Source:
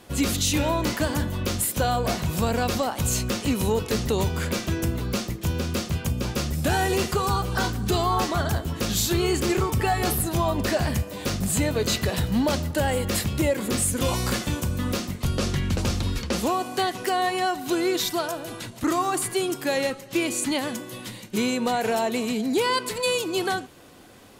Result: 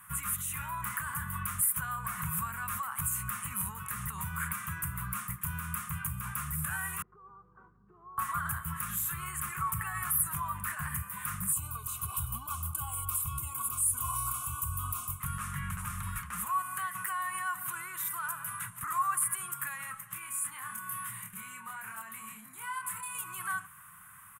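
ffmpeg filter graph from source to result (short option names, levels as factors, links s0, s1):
-filter_complex "[0:a]asettb=1/sr,asplit=3[s0][s1][s2];[s0]atrim=end=7.024[s3];[s1]atrim=start=7.02:end=8.18,asetpts=PTS-STARTPTS,afade=t=in:d=0.004:c=qsin,afade=t=out:st=1.156:d=0.004:c=qsin,asuperpass=centerf=400:order=4:qfactor=2.2,aeval=exprs='val(0)+0.00178*(sin(2*PI*50*n/s)+sin(2*PI*2*50*n/s)/2+sin(2*PI*3*50*n/s)/3+sin(2*PI*4*50*n/s)/4+sin(2*PI*5*50*n/s)/5)':c=same[s4];[s2]atrim=start=8.176[s5];[s3][s4]acrossfade=d=0.004:c1=hsin:c2=qsin[s6];[s6][s5]acrossfade=d=0.004:c1=qsin:c2=hsin,asettb=1/sr,asplit=3[s7][s8][s9];[s7]atrim=end=11.524[s10];[s8]atrim=start=11.52:end=15.2,asetpts=PTS-STARTPTS,afade=t=in:d=0.004:c=qsin,afade=t=out:st=3.676:d=0.004:c=qsin,asuperstop=centerf=1800:order=4:qfactor=1.1,aecho=1:1:2.7:0.97,atrim=end_sample=162288[s11];[s9]atrim=start=15.196[s12];[s10][s11]acrossfade=d=0.004:c1=hsin:c2=qsin[s13];[s13][s12]acrossfade=d=0.004:c1=qsin:c2=hsin,asettb=1/sr,asplit=3[s14][s15][s16];[s14]atrim=end=20.134[s17];[s15]atrim=start=20.13:end=23.15,asetpts=PTS-STARTPTS,afade=t=in:d=0.004:c=qsin,afade=t=out:st=3.016:d=0.004:c=qsin,acompressor=threshold=0.0178:ratio=4:attack=3.2:release=140:knee=1:detection=peak,asplit=2[s18][s19];[s19]adelay=27,volume=0.75[s20];[s18][s20]amix=inputs=2:normalize=0,atrim=end_sample=133182[s21];[s16]atrim=start=23.146[s22];[s17][s21]acrossfade=d=0.004:c1=hsin:c2=qsin[s23];[s23][s22]acrossfade=d=0.004:c1=qsin:c2=hsin,lowshelf=f=110:g=-12,alimiter=limit=0.075:level=0:latency=1:release=94,firequalizer=gain_entry='entry(170,0);entry(270,-30);entry(580,-30);entry(1100,9);entry(4500,-24);entry(9200,10)':delay=0.05:min_phase=1,volume=0.708"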